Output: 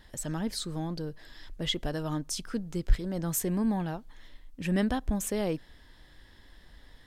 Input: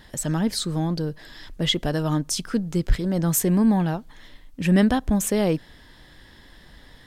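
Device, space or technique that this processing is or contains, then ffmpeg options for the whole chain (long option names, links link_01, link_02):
low shelf boost with a cut just above: -af "lowshelf=frequency=72:gain=6.5,equalizer=frequency=160:width_type=o:width=1.1:gain=-3.5,volume=-8dB"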